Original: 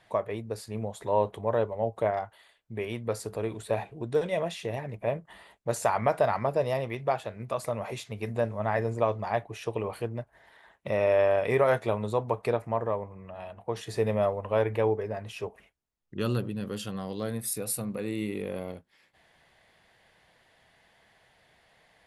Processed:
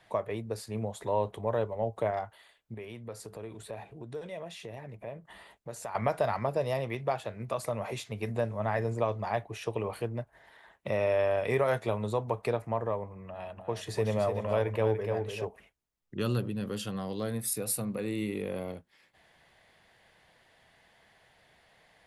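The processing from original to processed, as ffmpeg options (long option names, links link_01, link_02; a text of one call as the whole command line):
ffmpeg -i in.wav -filter_complex "[0:a]asettb=1/sr,asplit=3[link_01][link_02][link_03];[link_01]atrim=end=2.744[link_04];[link_02]atrim=start=2.74:end=5.95,asetpts=PTS-STARTPTS,afade=type=in:duration=0.004:curve=qsin,afade=type=out:start_time=3.206:duration=0.004:curve=qsin,acompressor=threshold=-46dB:ratio=2:attack=3.2:release=140:knee=1:detection=peak[link_05];[link_03]atrim=start=5.946[link_06];[link_04][link_05]acrossfade=duration=0.004:curve1=hsin:curve2=qsin[link_07];[link_07][link_06]acrossfade=duration=0.004:curve1=qsin:curve2=hsin,asettb=1/sr,asplit=3[link_08][link_09][link_10];[link_08]atrim=end=13.284[link_11];[link_09]atrim=start=13.28:end=15.45,asetpts=PTS-STARTPTS,afade=type=in:duration=0.004:curve=qsin,afade=type=out:start_time=2.166:duration=0.004:curve=qsin,aecho=1:1:292|584|876:0.447|0.0804|0.0145,atrim=end_sample=95697[link_12];[link_10]atrim=start=15.446[link_13];[link_11][link_12]acrossfade=duration=0.004:curve1=hsin:curve2=qsin[link_14];[link_14][link_13]acrossfade=duration=0.004:curve1=qsin:curve2=hsin,acrossover=split=140|3000[link_15][link_16][link_17];[link_16]acompressor=threshold=-31dB:ratio=1.5[link_18];[link_15][link_18][link_17]amix=inputs=3:normalize=0" out.wav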